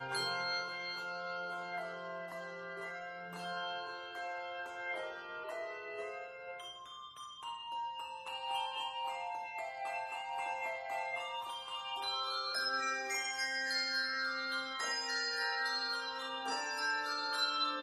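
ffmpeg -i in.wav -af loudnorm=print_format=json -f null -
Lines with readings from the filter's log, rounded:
"input_i" : "-37.5",
"input_tp" : "-21.8",
"input_lra" : "7.2",
"input_thresh" : "-47.6",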